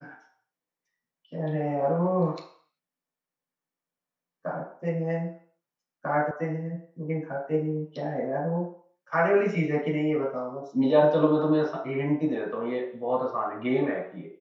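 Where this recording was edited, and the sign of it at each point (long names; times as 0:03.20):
0:06.31: cut off before it has died away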